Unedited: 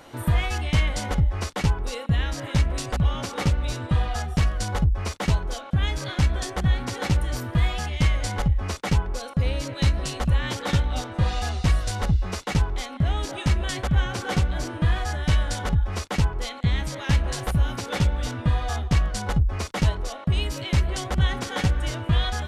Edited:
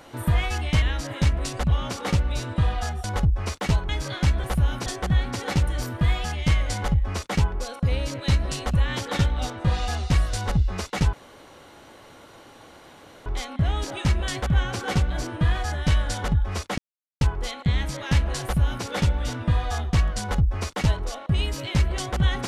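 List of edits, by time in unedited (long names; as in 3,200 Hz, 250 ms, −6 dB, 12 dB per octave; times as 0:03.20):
0:00.82–0:02.15: remove
0:04.37–0:04.63: remove
0:05.48–0:05.85: remove
0:12.67: splice in room tone 2.13 s
0:16.19: splice in silence 0.43 s
0:17.41–0:17.83: duplicate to 0:06.40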